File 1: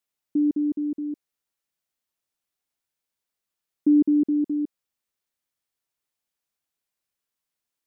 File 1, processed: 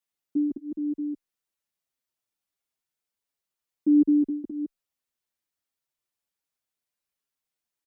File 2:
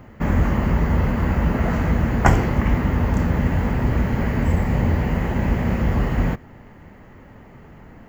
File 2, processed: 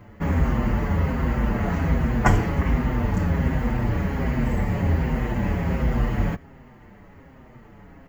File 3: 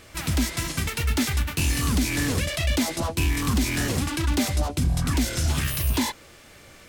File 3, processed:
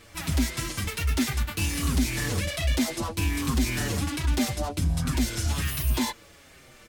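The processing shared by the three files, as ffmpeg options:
-filter_complex "[0:a]asplit=2[link_01][link_02];[link_02]adelay=6.4,afreqshift=-1.3[link_03];[link_01][link_03]amix=inputs=2:normalize=1"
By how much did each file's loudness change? −2.5, −3.0, −2.5 LU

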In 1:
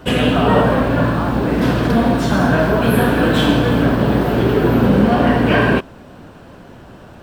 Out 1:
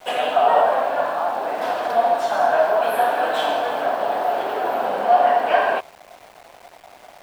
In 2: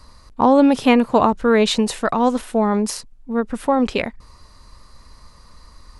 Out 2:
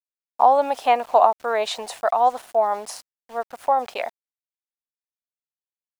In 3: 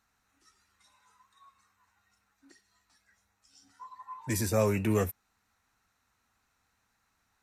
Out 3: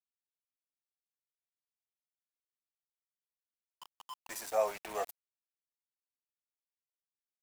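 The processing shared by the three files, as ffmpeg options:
-af "highpass=frequency=710:width_type=q:width=4.9,aeval=exprs='val(0)*gte(abs(val(0)),0.0178)':channel_layout=same,volume=-7.5dB"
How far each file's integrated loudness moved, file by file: −5.0, −3.0, −6.5 LU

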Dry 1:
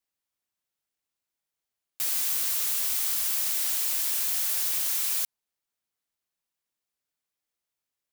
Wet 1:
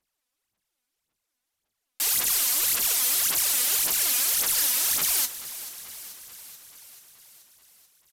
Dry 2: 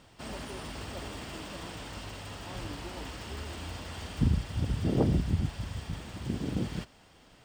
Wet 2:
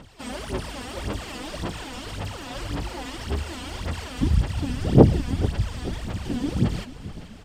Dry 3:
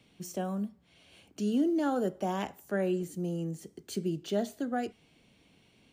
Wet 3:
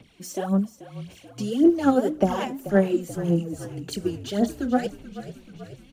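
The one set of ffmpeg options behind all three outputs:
-filter_complex "[0:a]aphaser=in_gain=1:out_gain=1:delay=4.1:decay=0.74:speed=1.8:type=sinusoidal,aresample=32000,aresample=44100,asplit=8[link_01][link_02][link_03][link_04][link_05][link_06][link_07][link_08];[link_02]adelay=434,afreqshift=-34,volume=-15dB[link_09];[link_03]adelay=868,afreqshift=-68,volume=-18.9dB[link_10];[link_04]adelay=1302,afreqshift=-102,volume=-22.8dB[link_11];[link_05]adelay=1736,afreqshift=-136,volume=-26.6dB[link_12];[link_06]adelay=2170,afreqshift=-170,volume=-30.5dB[link_13];[link_07]adelay=2604,afreqshift=-204,volume=-34.4dB[link_14];[link_08]adelay=3038,afreqshift=-238,volume=-38.3dB[link_15];[link_01][link_09][link_10][link_11][link_12][link_13][link_14][link_15]amix=inputs=8:normalize=0,volume=3dB"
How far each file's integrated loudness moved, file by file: +3.0, +8.0, +8.5 LU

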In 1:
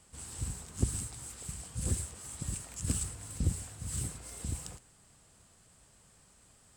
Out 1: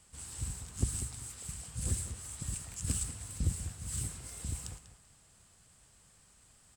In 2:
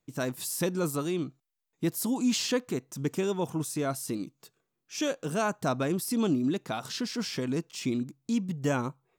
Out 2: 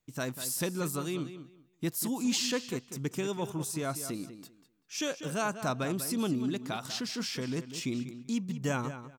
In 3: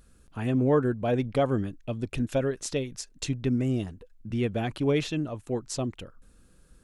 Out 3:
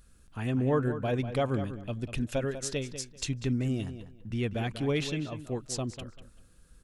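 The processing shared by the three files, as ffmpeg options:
-filter_complex "[0:a]equalizer=frequency=390:width=0.42:gain=-5,asplit=2[link_01][link_02];[link_02]adelay=194,lowpass=frequency=4600:poles=1,volume=-11dB,asplit=2[link_03][link_04];[link_04]adelay=194,lowpass=frequency=4600:poles=1,volume=0.21,asplit=2[link_05][link_06];[link_06]adelay=194,lowpass=frequency=4600:poles=1,volume=0.21[link_07];[link_01][link_03][link_05][link_07]amix=inputs=4:normalize=0"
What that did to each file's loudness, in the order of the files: −0.5, −3.0, −3.5 LU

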